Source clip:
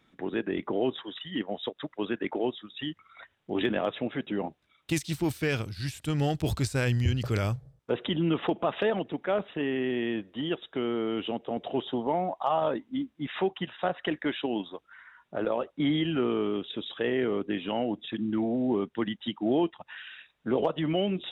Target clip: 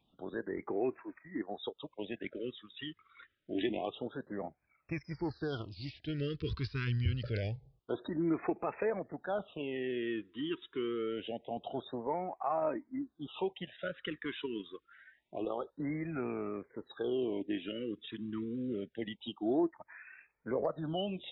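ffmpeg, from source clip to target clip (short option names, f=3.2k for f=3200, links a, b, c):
-af "flanger=delay=1.2:depth=2.1:regen=40:speed=0.43:shape=triangular,aresample=11025,aresample=44100,afftfilt=real='re*(1-between(b*sr/1024,650*pow(3800/650,0.5+0.5*sin(2*PI*0.26*pts/sr))/1.41,650*pow(3800/650,0.5+0.5*sin(2*PI*0.26*pts/sr))*1.41))':imag='im*(1-between(b*sr/1024,650*pow(3800/650,0.5+0.5*sin(2*PI*0.26*pts/sr))/1.41,650*pow(3800/650,0.5+0.5*sin(2*PI*0.26*pts/sr))*1.41))':win_size=1024:overlap=0.75,volume=-3dB"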